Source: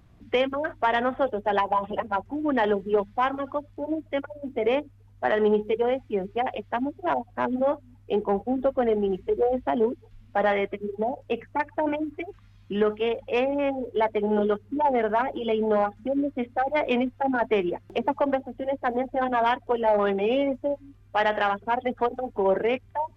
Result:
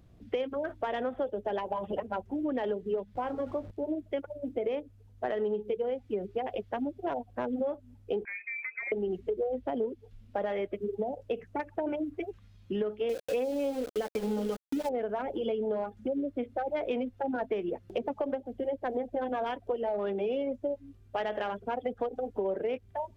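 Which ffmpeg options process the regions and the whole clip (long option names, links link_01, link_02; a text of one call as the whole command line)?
ffmpeg -i in.wav -filter_complex "[0:a]asettb=1/sr,asplit=3[link_01][link_02][link_03];[link_01]atrim=end=3.154[link_04];[link_02]atrim=start=3.15:end=3.71,asetpts=PTS-STARTPTS,afade=type=in:duration=0.004:curve=qsin,afade=type=out:start_time=0.556:duration=0.004:curve=qsin,aeval=exprs='val(0)+0.5*0.0112*sgn(val(0))':channel_layout=same,lowpass=frequency=1300:poles=1,asplit=2[link_05][link_06];[link_06]adelay=20,volume=-11dB[link_07];[link_05][link_07]amix=inputs=2:normalize=0,atrim=end_sample=24696[link_08];[link_03]atrim=start=3.706[link_09];[link_04][link_08]acrossfade=duration=0.004:curve1=hsin:curve2=qsin[link_10];[link_10][link_09]acrossfade=duration=0.004:curve1=qsin:curve2=hsin,asettb=1/sr,asplit=3[link_11][link_12][link_13];[link_11]atrim=end=8.254[link_14];[link_12]atrim=start=8.25:end=8.92,asetpts=PTS-STARTPTS,afade=type=in:duration=0.004:curve=qsin,afade=type=out:start_time=0.666:duration=0.004:curve=qsin,acompressor=threshold=-27dB:ratio=5:attack=3.2:release=140:knee=1:detection=peak,lowpass=frequency=2200:width_type=q:width=0.5098,lowpass=frequency=2200:width_type=q:width=0.6013,lowpass=frequency=2200:width_type=q:width=0.9,lowpass=frequency=2200:width_type=q:width=2.563,afreqshift=-2600[link_15];[link_13]atrim=start=8.916[link_16];[link_14][link_15]acrossfade=duration=0.004:curve1=hsin:curve2=qsin[link_17];[link_17][link_16]acrossfade=duration=0.004:curve1=qsin:curve2=hsin,asettb=1/sr,asplit=3[link_18][link_19][link_20];[link_18]atrim=end=13.094[link_21];[link_19]atrim=start=13.09:end=14.89,asetpts=PTS-STARTPTS,afade=type=in:duration=0.004:curve=qsin,afade=type=out:start_time=1.796:duration=0.004:curve=qsin,aecho=1:1:3.9:0.95,atrim=end_sample=79380,aeval=exprs='val(0)*gte(abs(val(0)),0.0335)':channel_layout=same[link_22];[link_20]atrim=start=14.886[link_23];[link_21][link_22]acrossfade=duration=0.004:curve1=hsin:curve2=qsin[link_24];[link_24][link_23]acrossfade=duration=0.004:curve1=qsin:curve2=hsin,equalizer=frequency=500:width_type=o:width=1:gain=5,equalizer=frequency=1000:width_type=o:width=1:gain=-6,equalizer=frequency=2000:width_type=o:width=1:gain=-4,acompressor=threshold=-26dB:ratio=6,volume=-2.5dB" out.wav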